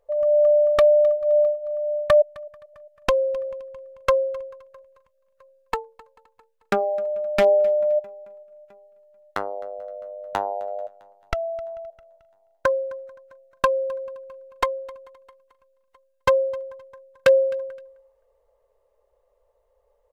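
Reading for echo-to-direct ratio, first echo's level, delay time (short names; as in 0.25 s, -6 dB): -21.5 dB, -22.0 dB, 0.26 s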